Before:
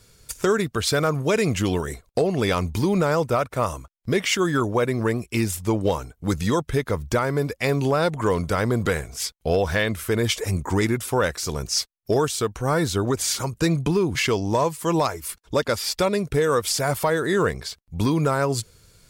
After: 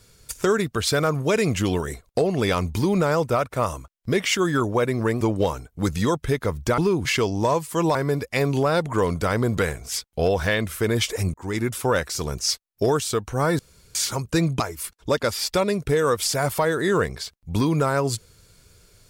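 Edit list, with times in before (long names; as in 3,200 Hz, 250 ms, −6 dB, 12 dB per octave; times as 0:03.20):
0:05.21–0:05.66: remove
0:10.62–0:10.98: fade in
0:12.87–0:13.23: fill with room tone
0:13.88–0:15.05: move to 0:07.23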